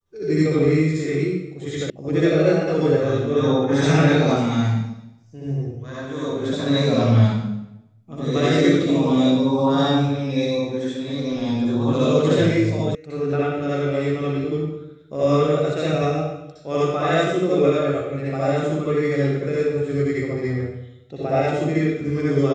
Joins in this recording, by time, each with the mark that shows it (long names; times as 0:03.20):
0:01.90: cut off before it has died away
0:12.95: cut off before it has died away